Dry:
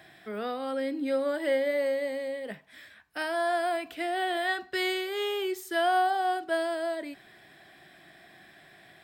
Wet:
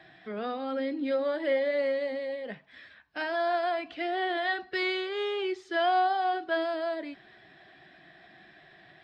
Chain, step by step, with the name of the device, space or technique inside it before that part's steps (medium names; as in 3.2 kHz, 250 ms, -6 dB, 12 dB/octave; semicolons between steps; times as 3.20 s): clip after many re-uploads (low-pass 5 kHz 24 dB/octave; coarse spectral quantiser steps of 15 dB)